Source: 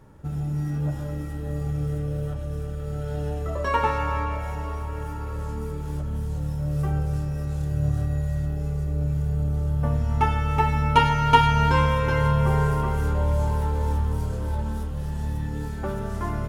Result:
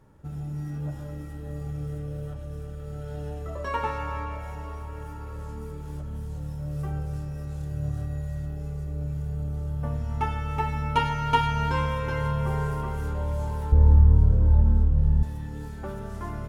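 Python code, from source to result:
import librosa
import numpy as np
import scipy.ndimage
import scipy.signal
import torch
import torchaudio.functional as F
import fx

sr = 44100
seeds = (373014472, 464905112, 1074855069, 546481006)

y = fx.tilt_eq(x, sr, slope=-4.0, at=(13.72, 15.23))
y = y * 10.0 ** (-6.0 / 20.0)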